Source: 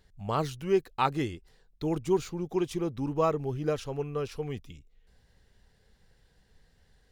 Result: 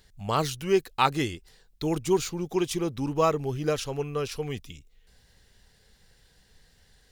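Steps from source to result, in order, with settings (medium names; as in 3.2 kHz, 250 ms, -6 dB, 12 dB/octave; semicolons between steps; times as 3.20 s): treble shelf 2.2 kHz +9.5 dB; trim +2 dB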